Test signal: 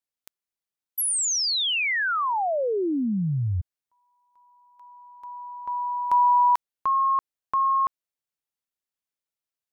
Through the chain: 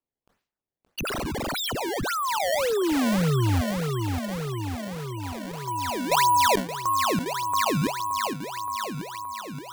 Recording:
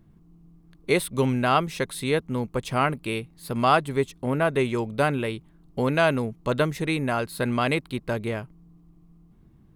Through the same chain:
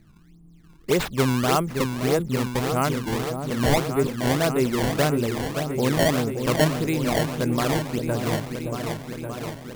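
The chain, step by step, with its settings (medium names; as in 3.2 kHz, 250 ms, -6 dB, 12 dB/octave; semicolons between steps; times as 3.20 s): tilt shelf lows +3.5 dB; delay with an opening low-pass 572 ms, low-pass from 750 Hz, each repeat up 2 oct, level -6 dB; decimation with a swept rate 20×, swing 160% 1.7 Hz; decay stretcher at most 130 dB/s; trim -1.5 dB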